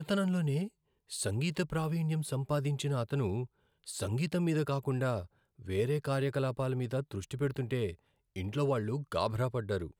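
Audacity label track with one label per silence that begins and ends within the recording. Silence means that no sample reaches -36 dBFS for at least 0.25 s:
0.670000	1.120000	silence
3.440000	3.880000	silence
5.220000	5.680000	silence
7.910000	8.360000	silence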